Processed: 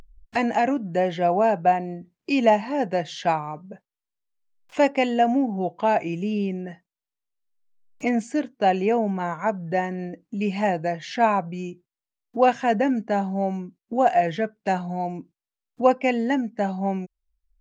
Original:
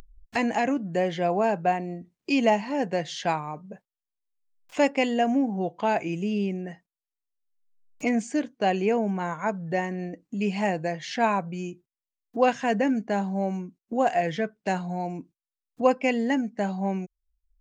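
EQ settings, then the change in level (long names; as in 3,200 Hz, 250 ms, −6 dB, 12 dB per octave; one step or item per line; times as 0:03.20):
dynamic equaliser 730 Hz, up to +4 dB, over −33 dBFS, Q 2.3
high-shelf EQ 7,100 Hz −9 dB
+1.5 dB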